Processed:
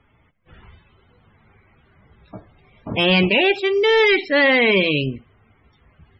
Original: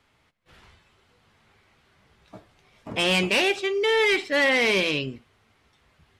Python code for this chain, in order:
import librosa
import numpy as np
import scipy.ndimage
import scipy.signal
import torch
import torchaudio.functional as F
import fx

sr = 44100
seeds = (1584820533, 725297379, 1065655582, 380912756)

y = fx.low_shelf(x, sr, hz=230.0, db=7.0)
y = fx.spec_topn(y, sr, count=64)
y = y * 10.0 ** (5.0 / 20.0)